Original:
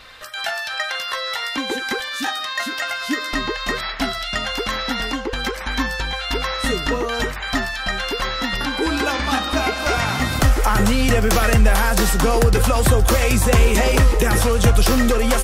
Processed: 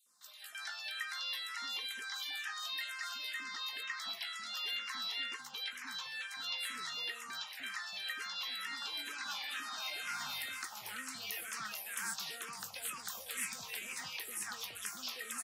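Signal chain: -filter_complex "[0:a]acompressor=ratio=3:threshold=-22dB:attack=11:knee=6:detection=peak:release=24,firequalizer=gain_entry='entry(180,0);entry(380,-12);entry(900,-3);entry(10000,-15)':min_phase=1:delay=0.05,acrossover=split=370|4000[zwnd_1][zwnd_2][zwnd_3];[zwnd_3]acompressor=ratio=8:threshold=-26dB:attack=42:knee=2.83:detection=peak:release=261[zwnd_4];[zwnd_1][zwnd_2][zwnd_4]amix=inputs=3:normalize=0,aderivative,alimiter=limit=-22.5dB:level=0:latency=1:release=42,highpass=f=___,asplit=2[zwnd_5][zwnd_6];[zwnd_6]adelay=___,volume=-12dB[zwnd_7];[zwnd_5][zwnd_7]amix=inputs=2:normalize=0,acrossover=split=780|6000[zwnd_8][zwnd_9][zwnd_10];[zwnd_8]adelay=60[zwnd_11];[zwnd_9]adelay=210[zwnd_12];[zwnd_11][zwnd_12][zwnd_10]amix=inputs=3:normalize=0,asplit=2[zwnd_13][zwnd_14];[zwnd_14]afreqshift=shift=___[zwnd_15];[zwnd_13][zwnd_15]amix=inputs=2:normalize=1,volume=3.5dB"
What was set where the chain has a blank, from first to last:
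150, 20, -2.1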